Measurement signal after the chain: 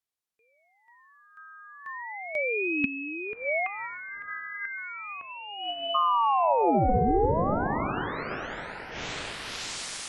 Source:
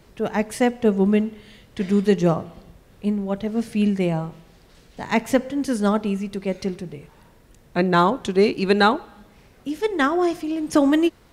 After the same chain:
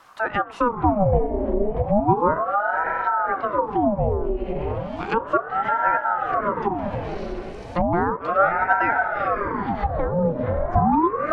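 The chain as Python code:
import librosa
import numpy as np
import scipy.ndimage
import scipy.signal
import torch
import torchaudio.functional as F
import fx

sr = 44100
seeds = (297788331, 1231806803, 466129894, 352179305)

p1 = fx.echo_diffused(x, sr, ms=576, feedback_pct=45, wet_db=-4)
p2 = 10.0 ** (-15.5 / 20.0) * np.tanh(p1 / 10.0 ** (-15.5 / 20.0))
p3 = p1 + (p2 * librosa.db_to_amplitude(-7.0))
p4 = fx.env_lowpass_down(p3, sr, base_hz=560.0, full_db=-15.0)
y = fx.ring_lfo(p4, sr, carrier_hz=660.0, swing_pct=75, hz=0.34)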